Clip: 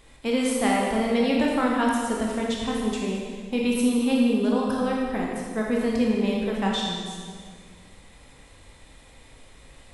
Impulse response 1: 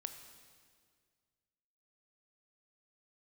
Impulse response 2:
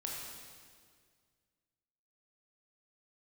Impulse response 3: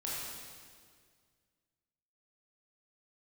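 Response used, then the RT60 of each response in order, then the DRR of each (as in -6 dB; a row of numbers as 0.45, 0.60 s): 2; 1.9, 1.9, 1.9 s; 7.0, -3.0, -7.0 dB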